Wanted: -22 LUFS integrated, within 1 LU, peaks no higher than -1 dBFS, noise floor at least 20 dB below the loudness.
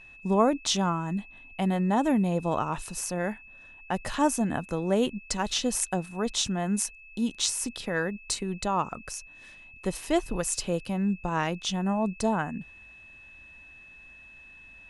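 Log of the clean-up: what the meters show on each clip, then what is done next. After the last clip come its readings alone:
steady tone 2600 Hz; tone level -48 dBFS; loudness -28.5 LUFS; peak -8.0 dBFS; loudness target -22.0 LUFS
-> notch 2600 Hz, Q 30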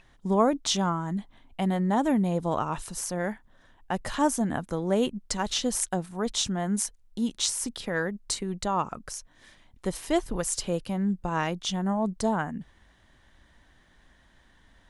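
steady tone none; loudness -28.5 LUFS; peak -8.0 dBFS; loudness target -22.0 LUFS
-> gain +6.5 dB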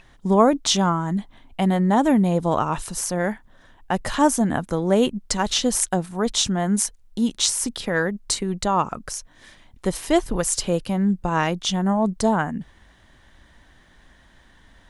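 loudness -22.0 LUFS; peak -1.5 dBFS; noise floor -54 dBFS

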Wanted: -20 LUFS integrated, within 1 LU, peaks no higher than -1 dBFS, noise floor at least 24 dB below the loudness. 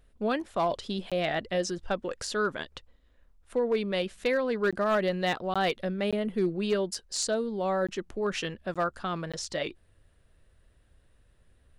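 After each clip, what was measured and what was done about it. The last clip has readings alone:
clipped 0.3%; flat tops at -19.5 dBFS; dropouts 7; longest dropout 16 ms; loudness -30.0 LUFS; peak -19.5 dBFS; loudness target -20.0 LUFS
-> clip repair -19.5 dBFS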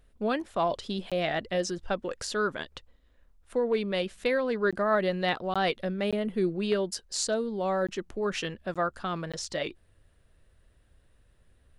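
clipped 0.0%; dropouts 7; longest dropout 16 ms
-> interpolate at 1.1/4.71/5.54/6.11/7.87/8.74/9.32, 16 ms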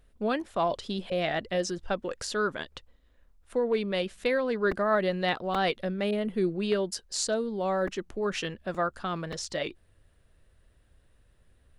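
dropouts 0; loudness -30.0 LUFS; peak -13.0 dBFS; loudness target -20.0 LUFS
-> gain +10 dB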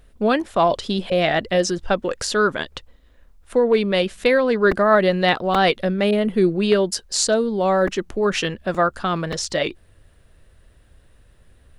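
loudness -20.0 LUFS; peak -3.0 dBFS; noise floor -54 dBFS

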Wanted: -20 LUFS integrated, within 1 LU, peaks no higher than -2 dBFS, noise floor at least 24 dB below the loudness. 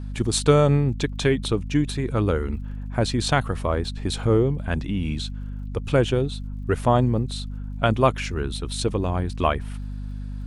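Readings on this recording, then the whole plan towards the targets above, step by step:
ticks 57/s; hum 50 Hz; harmonics up to 250 Hz; hum level -29 dBFS; loudness -23.5 LUFS; peak -4.0 dBFS; loudness target -20.0 LUFS
-> de-click; notches 50/100/150/200/250 Hz; gain +3.5 dB; limiter -2 dBFS

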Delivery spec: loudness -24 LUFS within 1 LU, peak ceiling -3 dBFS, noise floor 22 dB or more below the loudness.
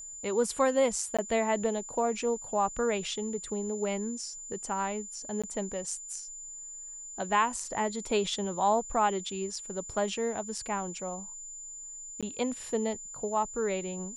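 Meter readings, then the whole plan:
dropouts 3; longest dropout 16 ms; steady tone 7100 Hz; tone level -41 dBFS; loudness -31.5 LUFS; peak -13.0 dBFS; loudness target -24.0 LUFS
-> interpolate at 1.17/5.42/12.21, 16 ms; notch 7100 Hz, Q 30; gain +7.5 dB

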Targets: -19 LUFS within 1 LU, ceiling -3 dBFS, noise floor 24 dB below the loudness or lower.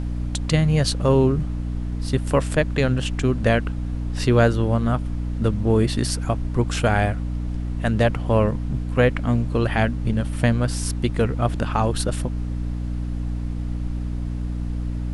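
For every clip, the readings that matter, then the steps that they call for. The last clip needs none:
hum 60 Hz; harmonics up to 300 Hz; hum level -24 dBFS; noise floor -27 dBFS; noise floor target -47 dBFS; loudness -22.5 LUFS; peak -4.0 dBFS; loudness target -19.0 LUFS
-> notches 60/120/180/240/300 Hz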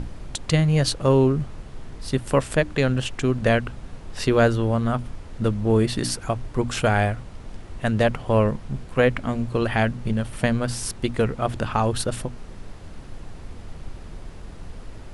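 hum none; noise floor -40 dBFS; noise floor target -47 dBFS
-> noise print and reduce 7 dB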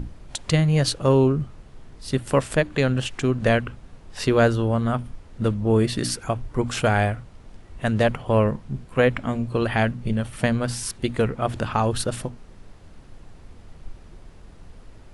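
noise floor -46 dBFS; noise floor target -47 dBFS
-> noise print and reduce 6 dB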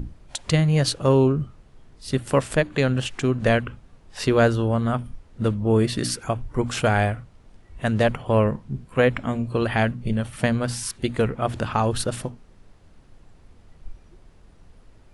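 noise floor -52 dBFS; loudness -23.0 LUFS; peak -5.5 dBFS; loudness target -19.0 LUFS
-> gain +4 dB; limiter -3 dBFS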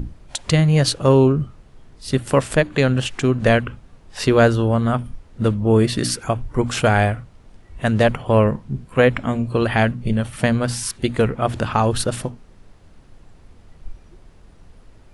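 loudness -19.0 LUFS; peak -3.0 dBFS; noise floor -48 dBFS

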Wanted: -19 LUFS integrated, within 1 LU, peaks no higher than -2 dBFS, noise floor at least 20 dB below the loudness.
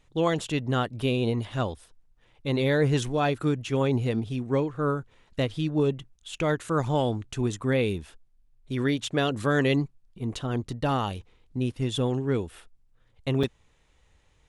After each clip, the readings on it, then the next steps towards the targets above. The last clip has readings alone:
dropouts 1; longest dropout 5.1 ms; loudness -27.5 LUFS; peak -12.0 dBFS; loudness target -19.0 LUFS
-> interpolate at 13.43, 5.1 ms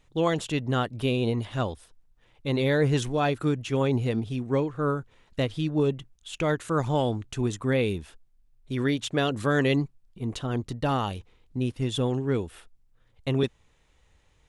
dropouts 0; loudness -27.5 LUFS; peak -12.0 dBFS; loudness target -19.0 LUFS
-> gain +8.5 dB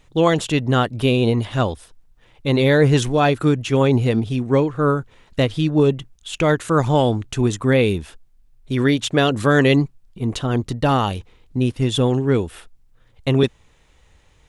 loudness -19.0 LUFS; peak -3.5 dBFS; noise floor -55 dBFS

